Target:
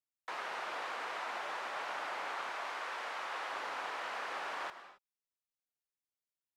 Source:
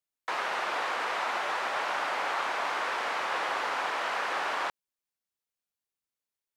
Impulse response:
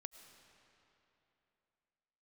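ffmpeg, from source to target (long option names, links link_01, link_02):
-filter_complex "[0:a]asettb=1/sr,asplit=3[link_01][link_02][link_03];[link_01]atrim=end=0.934[link_04];[link_02]atrim=start=0.93:end=1.44,asetpts=PTS-STARTPTS,afade=type=in:duration=0.004:curve=qsin,afade=type=out:start_time=0.506:duration=0.004:curve=qsin,highpass=130[link_05];[link_03]atrim=start=1.436[link_06];[link_04][link_05]acrossfade=duration=0.004:curve1=hsin:curve2=qsin[link_07];[link_07][link_06]acrossfade=duration=0.004:curve1=qsin:curve2=hsin,asettb=1/sr,asplit=3[link_08][link_09][link_10];[link_08]atrim=end=2.494[link_11];[link_09]atrim=start=2.49:end=3.53,asetpts=PTS-STARTPTS,afade=type=in:duration=0.004:curve=qsin,afade=type=out:start_time=1.036:duration=0.004:curve=qsin,lowshelf=frequency=230:gain=-10[link_12];[link_10]atrim=start=3.526[link_13];[link_11][link_12]acrossfade=duration=0.004:curve1=hsin:curve2=qsin[link_14];[link_14][link_13]acrossfade=duration=0.004:curve1=qsin:curve2=hsin[link_15];[1:a]atrim=start_sample=2205,afade=type=out:start_time=0.33:duration=0.01,atrim=end_sample=14994[link_16];[link_15][link_16]afir=irnorm=-1:irlink=0,volume=-3.5dB"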